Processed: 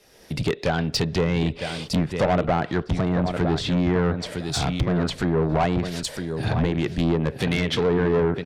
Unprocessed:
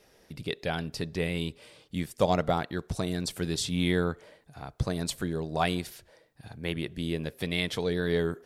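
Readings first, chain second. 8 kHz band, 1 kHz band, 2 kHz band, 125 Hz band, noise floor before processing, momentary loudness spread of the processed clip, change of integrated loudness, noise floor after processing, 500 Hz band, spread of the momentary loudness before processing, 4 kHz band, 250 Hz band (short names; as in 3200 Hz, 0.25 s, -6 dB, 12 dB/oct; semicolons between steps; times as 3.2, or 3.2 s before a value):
+3.5 dB, +7.0 dB, +5.5 dB, +9.5 dB, -62 dBFS, 6 LU, +7.0 dB, -43 dBFS, +7.5 dB, 14 LU, +5.0 dB, +8.5 dB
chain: recorder AGC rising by 17 dB/s; on a send: feedback echo 0.958 s, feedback 15%, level -11 dB; on the sum: treble ducked by the level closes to 1500 Hz, closed at -22.5 dBFS; in parallel at -2.5 dB: compressor, threshold -37 dBFS, peak gain reduction 18 dB; on the sum: soft clip -25.5 dBFS, distortion -9 dB; three-band expander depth 40%; gain +9 dB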